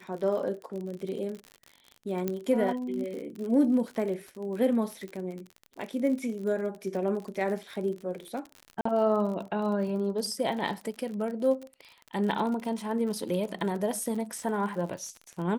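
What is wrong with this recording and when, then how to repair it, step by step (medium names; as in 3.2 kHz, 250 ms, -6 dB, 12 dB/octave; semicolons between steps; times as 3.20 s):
crackle 52 per s -35 dBFS
2.28 s: pop -16 dBFS
8.81–8.85 s: dropout 44 ms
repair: de-click; interpolate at 8.81 s, 44 ms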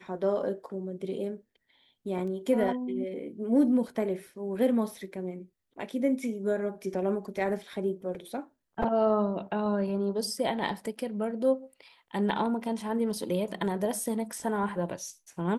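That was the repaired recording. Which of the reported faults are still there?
2.28 s: pop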